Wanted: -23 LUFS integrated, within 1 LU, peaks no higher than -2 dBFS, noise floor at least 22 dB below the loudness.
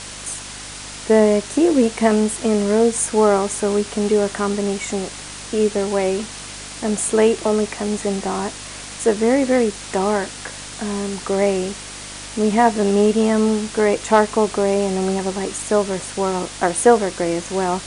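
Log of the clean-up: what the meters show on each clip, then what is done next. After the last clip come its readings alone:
hum 50 Hz; harmonics up to 300 Hz; hum level -41 dBFS; noise floor -34 dBFS; noise floor target -41 dBFS; loudness -19.0 LUFS; peak -1.0 dBFS; loudness target -23.0 LUFS
-> de-hum 50 Hz, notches 6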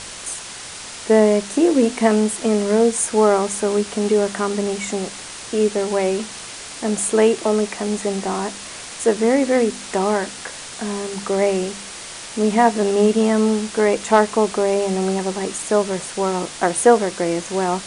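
hum none; noise floor -34 dBFS; noise floor target -42 dBFS
-> noise print and reduce 8 dB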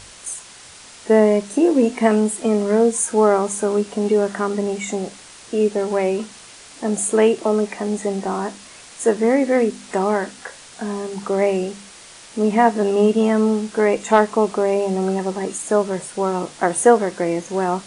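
noise floor -42 dBFS; loudness -19.5 LUFS; peak -1.0 dBFS; loudness target -23.0 LUFS
-> gain -3.5 dB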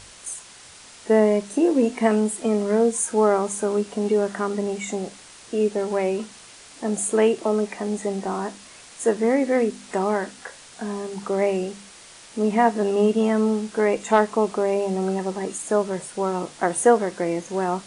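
loudness -23.0 LUFS; peak -4.5 dBFS; noise floor -46 dBFS

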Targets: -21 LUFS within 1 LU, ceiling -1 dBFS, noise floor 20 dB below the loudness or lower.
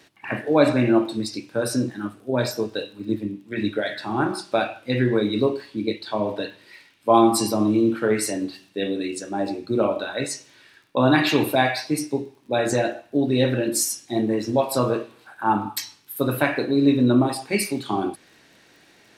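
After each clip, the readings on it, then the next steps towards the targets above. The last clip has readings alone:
ticks 22/s; loudness -23.0 LUFS; peak -4.0 dBFS; loudness target -21.0 LUFS
-> de-click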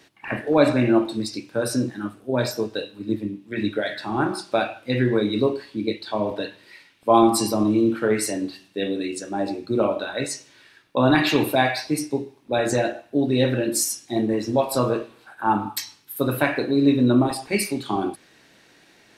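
ticks 0/s; loudness -23.0 LUFS; peak -4.0 dBFS; loudness target -21.0 LUFS
-> gain +2 dB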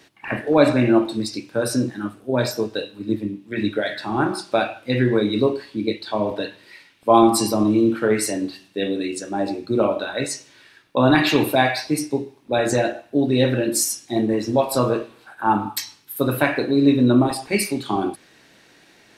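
loudness -21.0 LUFS; peak -2.0 dBFS; noise floor -53 dBFS

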